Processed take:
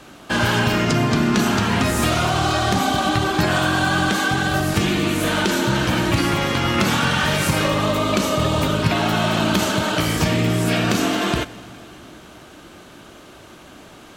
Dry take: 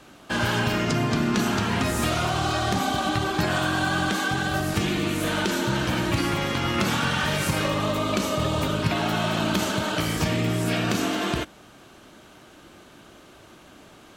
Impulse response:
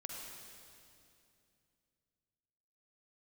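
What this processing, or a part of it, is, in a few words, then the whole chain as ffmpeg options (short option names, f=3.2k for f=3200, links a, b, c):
saturated reverb return: -filter_complex "[0:a]asplit=2[a][b];[1:a]atrim=start_sample=2205[c];[b][c]afir=irnorm=-1:irlink=0,asoftclip=type=tanh:threshold=-29.5dB,volume=-8.5dB[d];[a][d]amix=inputs=2:normalize=0,volume=4.5dB"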